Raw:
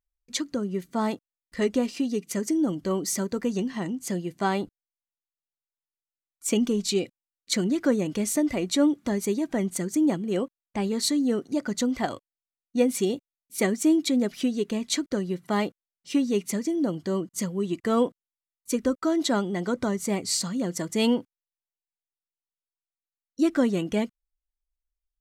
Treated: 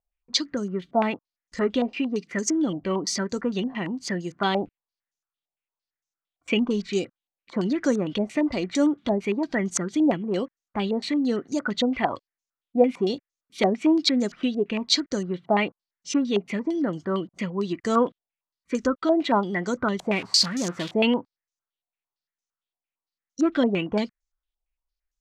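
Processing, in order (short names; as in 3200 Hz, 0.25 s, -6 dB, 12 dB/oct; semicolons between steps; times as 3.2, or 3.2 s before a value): 19.99–20.94 switching spikes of -20.5 dBFS; stepped low-pass 8.8 Hz 730–6400 Hz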